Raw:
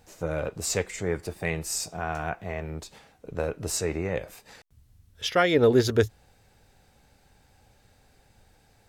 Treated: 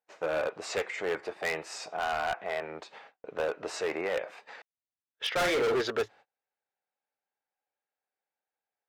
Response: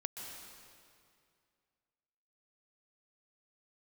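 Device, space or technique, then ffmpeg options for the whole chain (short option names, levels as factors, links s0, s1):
walkie-talkie: -filter_complex "[0:a]asettb=1/sr,asplit=3[s0][s1][s2];[s0]atrim=end=5.324[s3];[s1]atrim=start=5.32:end=5.8,asetpts=PTS-STARTPTS,afade=t=in:d=0.004:c=qsin,afade=t=out:st=0.476:d=0.004:c=qsin,asplit=2[s4][s5];[s5]adelay=44,volume=0.447[s6];[s4][s6]amix=inputs=2:normalize=0,atrim=end_sample=21168[s7];[s2]atrim=start=5.796[s8];[s3][s7]acrossfade=d=0.004:c1=hsin:c2=qsin[s9];[s9][s8]acrossfade=d=0.004:c1=qsin:c2=hsin,highpass=590,lowpass=2400,asoftclip=type=hard:threshold=0.0282,agate=range=0.0251:threshold=0.00126:ratio=16:detection=peak,volume=2"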